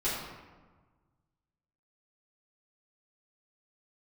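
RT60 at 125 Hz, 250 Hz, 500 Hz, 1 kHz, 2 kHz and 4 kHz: 2.1 s, 1.6 s, 1.4 s, 1.4 s, 1.1 s, 0.75 s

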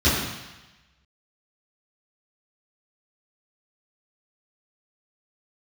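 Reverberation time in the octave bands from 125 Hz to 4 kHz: 1.1 s, 1.0 s, 0.95 s, 1.1 s, 1.2 s, 1.2 s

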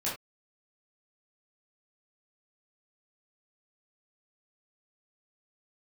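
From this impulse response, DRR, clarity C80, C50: -8.0 dB, 12.0 dB, 5.0 dB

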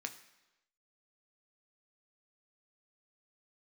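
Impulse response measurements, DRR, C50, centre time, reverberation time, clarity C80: 5.5 dB, 13.0 dB, 9 ms, 1.0 s, 15.0 dB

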